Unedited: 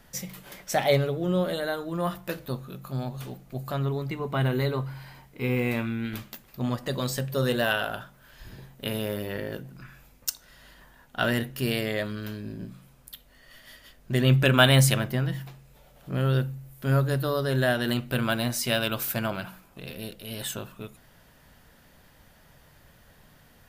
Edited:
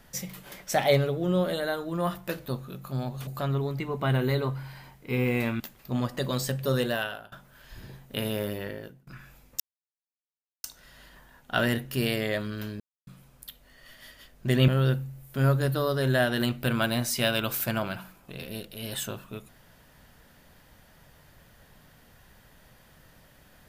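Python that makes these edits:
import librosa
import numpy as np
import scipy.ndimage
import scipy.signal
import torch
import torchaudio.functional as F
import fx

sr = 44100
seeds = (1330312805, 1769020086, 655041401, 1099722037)

y = fx.edit(x, sr, fx.cut(start_s=3.27, length_s=0.31),
    fx.cut(start_s=5.91, length_s=0.38),
    fx.fade_out_to(start_s=7.41, length_s=0.6, floor_db=-24.0),
    fx.fade_out_to(start_s=9.18, length_s=0.58, floor_db=-23.5),
    fx.insert_silence(at_s=10.29, length_s=1.04),
    fx.silence(start_s=12.45, length_s=0.27),
    fx.cut(start_s=14.33, length_s=1.83), tone=tone)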